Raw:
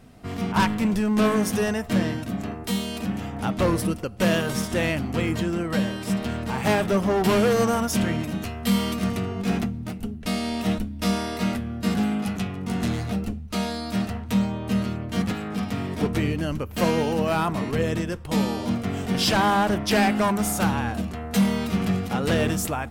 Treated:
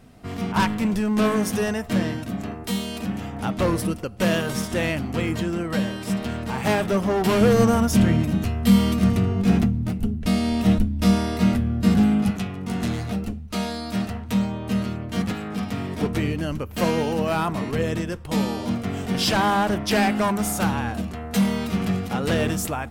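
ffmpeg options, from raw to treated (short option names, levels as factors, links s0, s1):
-filter_complex "[0:a]asettb=1/sr,asplit=3[s0][s1][s2];[s0]atrim=end=7.414[s3];[s1]atrim=start=7.41:end=12.31,asetpts=PTS-STARTPTS,afade=t=in:d=0.004:c=qsin,afade=t=out:st=4.896:d=0.004:c=qsin,lowshelf=f=240:g=11[s4];[s2]atrim=start=12.306[s5];[s3][s4]acrossfade=d=0.004:c1=hsin:c2=qsin[s6];[s6][s5]acrossfade=d=0.004:c1=qsin:c2=hsin"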